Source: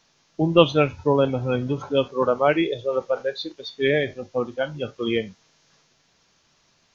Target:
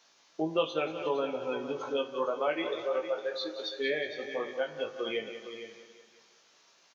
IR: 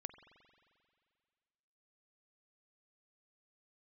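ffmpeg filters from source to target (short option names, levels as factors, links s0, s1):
-filter_complex "[0:a]highpass=390,asplit=2[s0][s1];[s1]aecho=0:1:182|364|546|728:0.178|0.0836|0.0393|0.0185[s2];[s0][s2]amix=inputs=2:normalize=0,acompressor=threshold=0.02:ratio=2,asplit=2[s3][s4];[s4]adelay=19,volume=0.596[s5];[s3][s5]amix=inputs=2:normalize=0,aecho=1:1:459:0.282,asplit=2[s6][s7];[1:a]atrim=start_sample=2205[s8];[s7][s8]afir=irnorm=-1:irlink=0,volume=2.11[s9];[s6][s9]amix=inputs=2:normalize=0,volume=0.376"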